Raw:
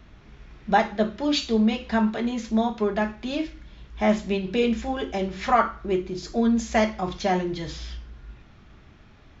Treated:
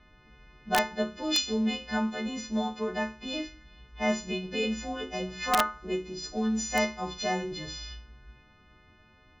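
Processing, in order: partials quantised in pitch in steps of 3 st; level-controlled noise filter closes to 2.9 kHz, open at -18.5 dBFS; integer overflow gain 7.5 dB; trim -7 dB

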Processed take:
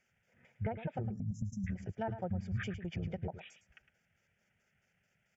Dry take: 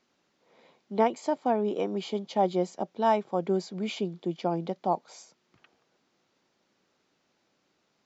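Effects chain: pitch shift switched off and on -11.5 st, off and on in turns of 164 ms; spectral selection erased 1.65–2.50 s, 290–5200 Hz; low-pass that closes with the level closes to 1.1 kHz, closed at -21.5 dBFS; high-order bell 640 Hz -9 dB; compression 6:1, threshold -30 dBFS, peak gain reduction 8 dB; tempo 1.5×; static phaser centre 1.1 kHz, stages 6; on a send: delay 108 ms -11.5 dB; on the sum: trim +2.5 dB

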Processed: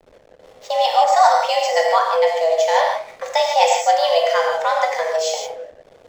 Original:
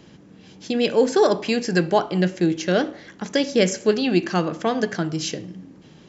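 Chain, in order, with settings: gated-style reverb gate 190 ms flat, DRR -0.5 dB; frequency shift +320 Hz; hysteresis with a dead band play -37.5 dBFS; trim +1 dB

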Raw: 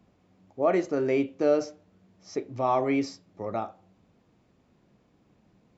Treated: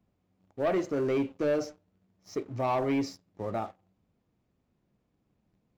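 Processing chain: bass shelf 120 Hz +8 dB; waveshaping leveller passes 2; trim -9 dB

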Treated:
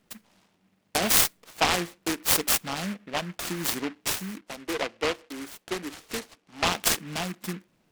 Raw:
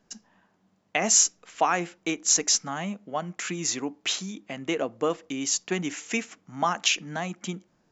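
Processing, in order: 4.41–6.65 s: three-band isolator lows -17 dB, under 300 Hz, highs -21 dB, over 2.5 kHz; delay time shaken by noise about 1.7 kHz, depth 0.18 ms

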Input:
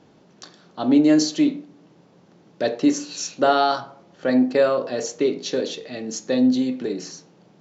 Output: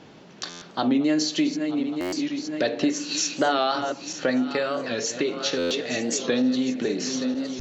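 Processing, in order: backward echo that repeats 459 ms, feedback 62%, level -13 dB; peaking EQ 2.6 kHz +6.5 dB 1.9 oct; compression 3:1, threshold -28 dBFS, peak gain reduction 13 dB; 4.31–5.67 s: peaking EQ 630 Hz -4.5 dB 1.4 oct; buffer glitch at 0.49/2.00/5.58 s, samples 512, times 10; warped record 45 rpm, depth 100 cents; trim +5 dB

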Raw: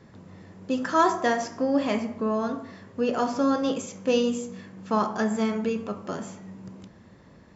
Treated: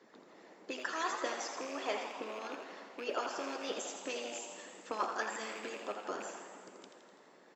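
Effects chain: rattle on loud lows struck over -33 dBFS, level -31 dBFS; high-pass 280 Hz 24 dB/octave; harmonic-percussive split harmonic -17 dB; in parallel at -2 dB: compression, threshold -42 dBFS, peak gain reduction 15.5 dB; on the sum: frequency-shifting echo 83 ms, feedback 62%, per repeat +110 Hz, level -7.5 dB; on a send at -9.5 dB: reverberation RT60 2.6 s, pre-delay 48 ms; on the sum: trim -5.5 dB

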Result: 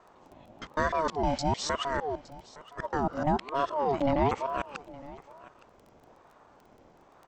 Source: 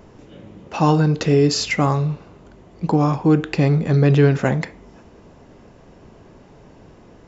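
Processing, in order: time reversed locally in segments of 154 ms; crackle 15 per s -33 dBFS; on a send: delay 864 ms -19.5 dB; on the sum: ring modulator with a swept carrier 630 Hz, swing 35%, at 1.1 Hz; trim -9 dB

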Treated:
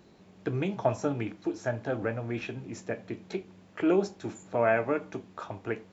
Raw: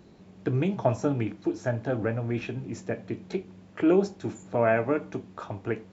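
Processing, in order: bass shelf 360 Hz -6.5 dB

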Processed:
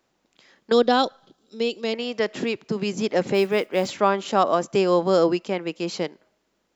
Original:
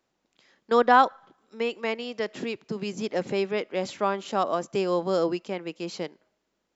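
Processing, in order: 0.72–1.94 s: ten-band graphic EQ 1 kHz -12 dB, 2 kHz -11 dB, 4 kHz +8 dB; 3.34–3.91 s: modulation noise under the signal 31 dB; trim +6 dB

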